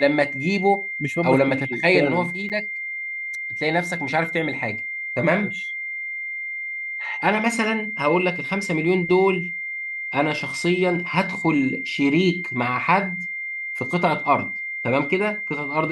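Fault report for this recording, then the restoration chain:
whine 2.1 kHz -27 dBFS
2.49–2.50 s: dropout 8.3 ms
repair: band-stop 2.1 kHz, Q 30; interpolate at 2.49 s, 8.3 ms

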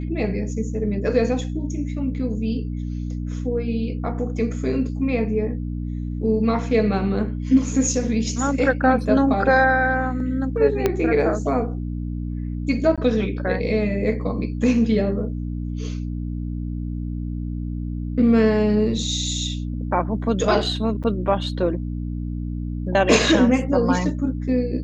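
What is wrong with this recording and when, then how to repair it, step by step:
hum 60 Hz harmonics 5 -27 dBFS
10.86 s: pop -6 dBFS
12.96–12.98 s: dropout 16 ms
21.03–21.04 s: dropout 7.8 ms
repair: de-click; de-hum 60 Hz, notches 5; interpolate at 12.96 s, 16 ms; interpolate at 21.03 s, 7.8 ms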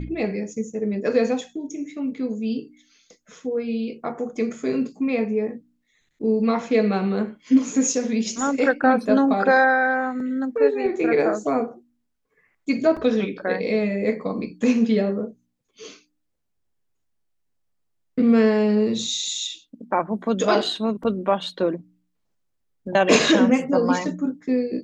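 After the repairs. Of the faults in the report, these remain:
10.86 s: pop

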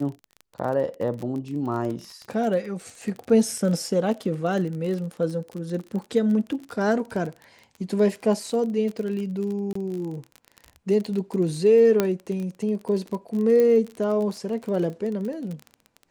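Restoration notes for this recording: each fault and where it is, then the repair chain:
crackle 29 per s -30 dBFS
9.73–9.75 s: dropout 24 ms
12.00 s: pop -7 dBFS
13.60 s: pop -12 dBFS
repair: de-click; interpolate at 9.73 s, 24 ms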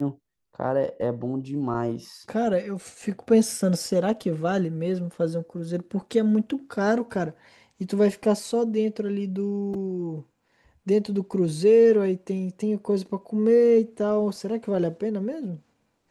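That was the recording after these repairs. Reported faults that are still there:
nothing left

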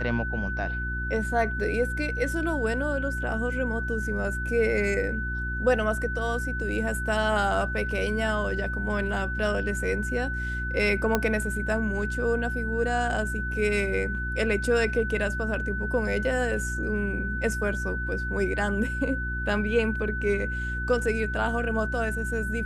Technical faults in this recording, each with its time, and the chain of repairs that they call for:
hum 60 Hz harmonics 6 -32 dBFS
whine 1.5 kHz -31 dBFS
11.15 s: pop -8 dBFS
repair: de-click; de-hum 60 Hz, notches 6; band-stop 1.5 kHz, Q 30

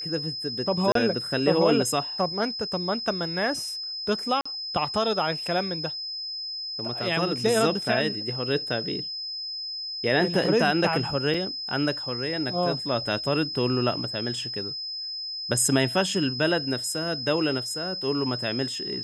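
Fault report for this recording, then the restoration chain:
whine 5.1 kHz -31 dBFS
0.92–0.95 s: dropout 33 ms
4.41–4.46 s: dropout 45 ms
11.34 s: dropout 3 ms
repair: band-stop 5.1 kHz, Q 30; interpolate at 0.92 s, 33 ms; interpolate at 4.41 s, 45 ms; interpolate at 11.34 s, 3 ms

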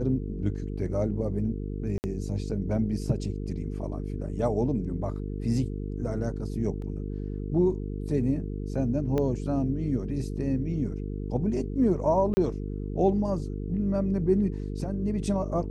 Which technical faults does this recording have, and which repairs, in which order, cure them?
buzz 50 Hz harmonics 9 -33 dBFS
1.98–2.04 s: dropout 59 ms
6.82 s: dropout 2.1 ms
9.18 s: pop -17 dBFS
12.34–12.37 s: dropout 30 ms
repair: de-click; de-hum 50 Hz, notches 9; interpolate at 1.98 s, 59 ms; interpolate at 6.82 s, 2.1 ms; interpolate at 12.34 s, 30 ms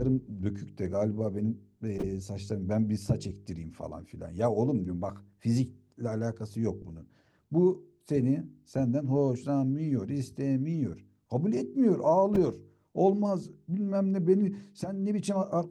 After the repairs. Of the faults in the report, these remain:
9.18 s: pop

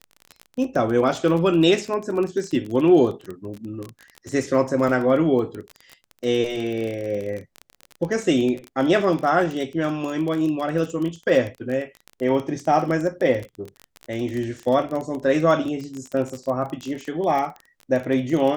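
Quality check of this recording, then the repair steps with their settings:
crackle 26 per s -26 dBFS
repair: de-click

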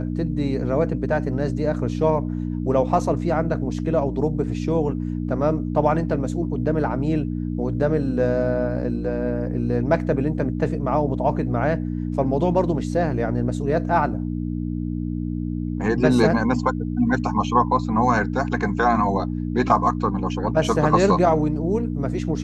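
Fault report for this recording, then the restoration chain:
hum 60 Hz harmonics 5 -26 dBFS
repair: de-hum 60 Hz, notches 5

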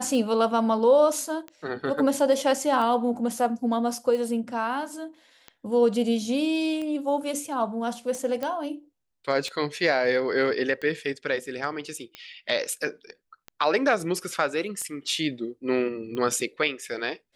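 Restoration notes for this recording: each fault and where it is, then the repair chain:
tick 45 rpm
8.43 s: pop -17 dBFS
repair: de-click

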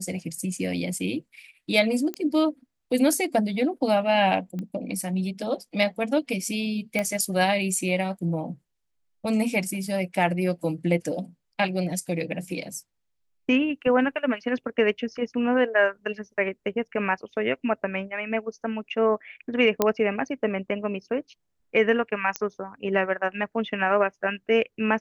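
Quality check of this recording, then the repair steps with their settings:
2.14 s: pop -16 dBFS
4.59 s: pop -22 dBFS
6.99 s: pop -12 dBFS
19.82 s: pop -6 dBFS
22.36 s: pop -10 dBFS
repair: de-click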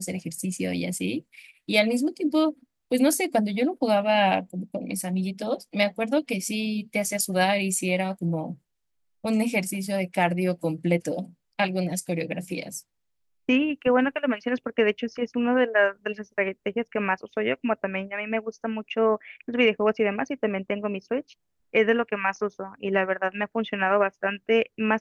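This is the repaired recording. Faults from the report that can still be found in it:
nothing left

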